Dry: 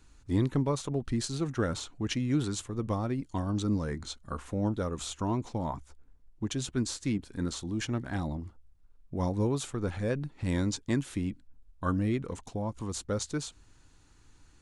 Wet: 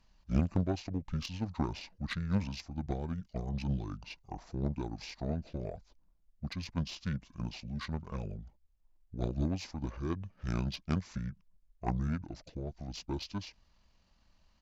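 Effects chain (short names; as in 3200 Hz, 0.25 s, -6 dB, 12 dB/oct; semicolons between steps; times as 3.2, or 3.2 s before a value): pitch shift -7 st; added harmonics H 3 -14 dB, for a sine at -16.5 dBFS; gain +1 dB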